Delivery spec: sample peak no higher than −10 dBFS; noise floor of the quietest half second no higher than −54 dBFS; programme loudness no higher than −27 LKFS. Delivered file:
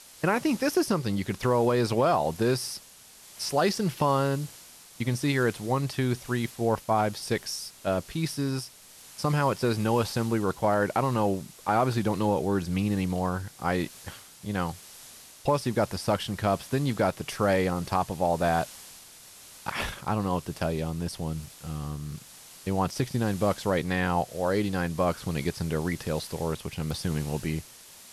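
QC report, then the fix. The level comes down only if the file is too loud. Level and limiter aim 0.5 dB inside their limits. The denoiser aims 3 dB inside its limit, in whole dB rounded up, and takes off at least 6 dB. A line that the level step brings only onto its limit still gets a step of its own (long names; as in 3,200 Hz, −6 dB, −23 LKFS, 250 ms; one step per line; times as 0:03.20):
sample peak −13.0 dBFS: in spec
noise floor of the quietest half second −51 dBFS: out of spec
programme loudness −28.0 LKFS: in spec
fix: broadband denoise 6 dB, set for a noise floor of −51 dBFS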